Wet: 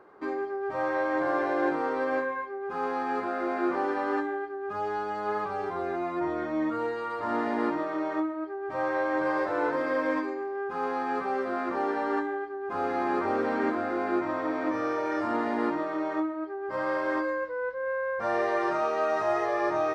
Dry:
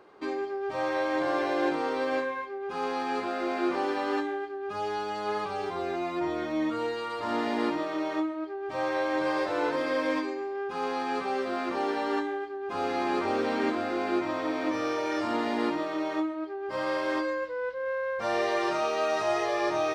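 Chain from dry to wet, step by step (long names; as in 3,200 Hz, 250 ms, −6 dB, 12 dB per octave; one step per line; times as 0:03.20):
high shelf with overshoot 2,200 Hz −8.5 dB, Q 1.5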